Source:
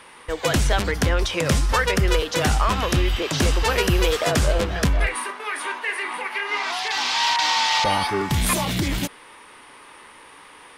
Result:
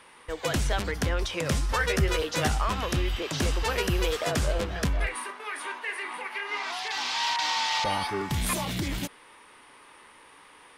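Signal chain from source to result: 1.79–2.48 s: doubling 13 ms -2 dB; trim -7 dB

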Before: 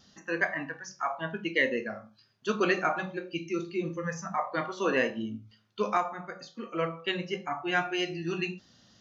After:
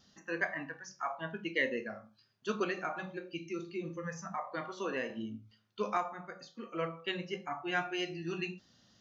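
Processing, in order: 2.63–5.10 s: compression 2:1, threshold -30 dBFS, peak gain reduction 5.5 dB; trim -5.5 dB

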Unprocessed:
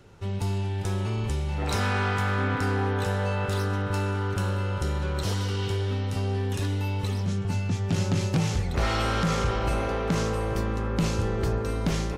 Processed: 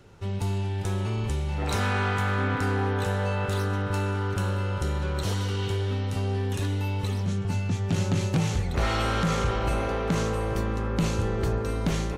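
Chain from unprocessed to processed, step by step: dynamic bell 5.1 kHz, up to -6 dB, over -57 dBFS, Q 7.5

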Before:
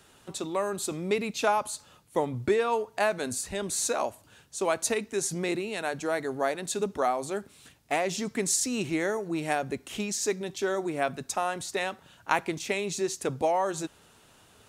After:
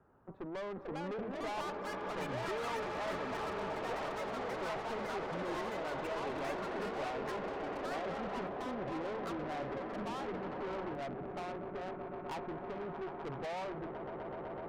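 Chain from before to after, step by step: low-pass 1.3 kHz 24 dB/octave; echo with a slow build-up 126 ms, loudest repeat 8, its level -15.5 dB; valve stage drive 34 dB, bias 0.55; ever faster or slower copies 565 ms, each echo +6 st, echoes 3; trim -4 dB

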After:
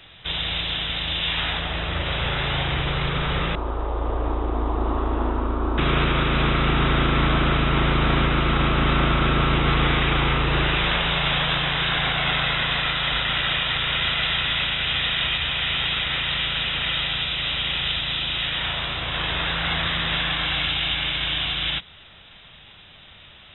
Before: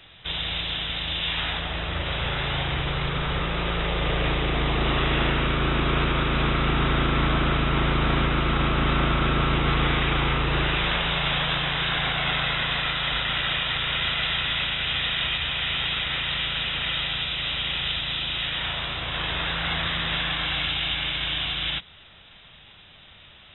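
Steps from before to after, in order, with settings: 3.55–5.78 s: FFT filter 100 Hz 0 dB, 150 Hz -27 dB, 250 Hz +1 dB, 530 Hz -4 dB, 1 kHz +1 dB, 2.1 kHz -22 dB; trim +2.5 dB

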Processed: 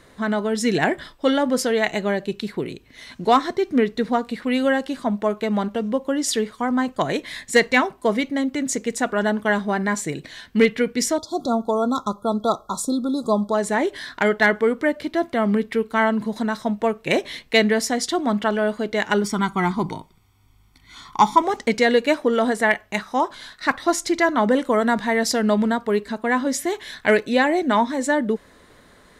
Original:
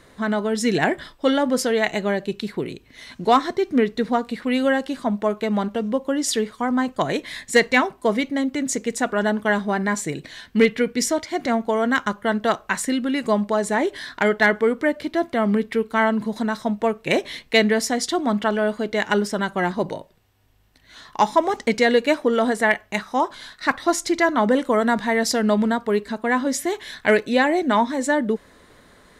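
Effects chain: 11.18–13.54 s: spectral selection erased 1.4–3.3 kHz; 19.24–21.42 s: comb 0.9 ms, depth 85%

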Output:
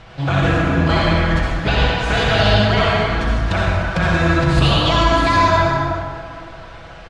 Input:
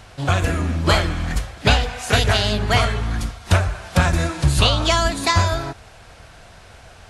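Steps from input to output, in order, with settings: low-pass 3.6 kHz 12 dB/octave; comb 6.1 ms, depth 51%; peak limiter -11.5 dBFS, peak gain reduction 8 dB; reverberation RT60 2.1 s, pre-delay 53 ms, DRR -3.5 dB; trim +1.5 dB

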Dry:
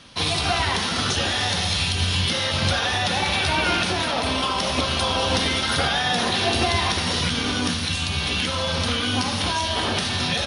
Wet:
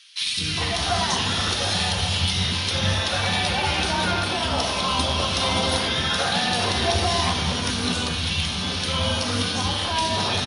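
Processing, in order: three bands offset in time highs, lows, mids 210/410 ms, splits 330/1900 Hz; on a send at -9 dB: reverberation RT60 0.75 s, pre-delay 5 ms

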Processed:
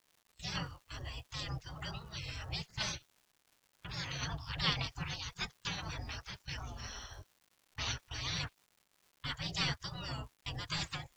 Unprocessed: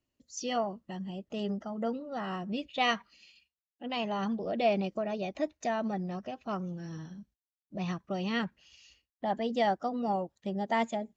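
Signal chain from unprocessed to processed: spectral gate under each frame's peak -30 dB weak; gate with hold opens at -54 dBFS; resonant low shelf 220 Hz +12 dB, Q 1.5; crackle 290 per s -68 dBFS; trim +14 dB

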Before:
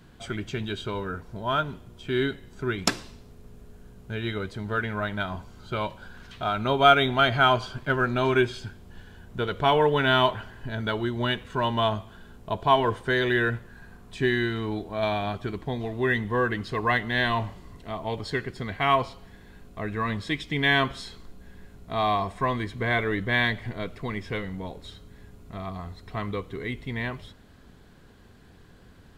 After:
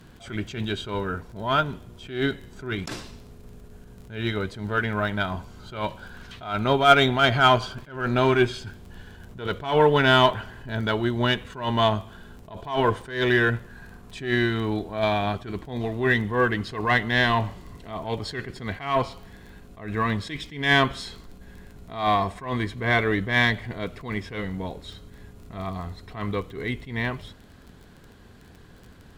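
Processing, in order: crackle 17 per s -41 dBFS; Chebyshev shaper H 8 -30 dB, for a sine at -4.5 dBFS; attacks held to a fixed rise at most 120 dB/s; trim +3.5 dB

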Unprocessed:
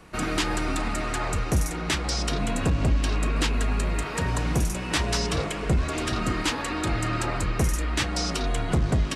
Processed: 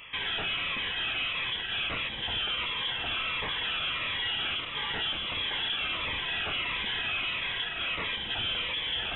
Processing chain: steep high-pass 400 Hz 48 dB/octave; in parallel at +2.5 dB: compressor with a negative ratio -35 dBFS; on the sum: overload inside the chain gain 27 dB; frequency inversion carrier 3.8 kHz; Shepard-style phaser falling 1.5 Hz

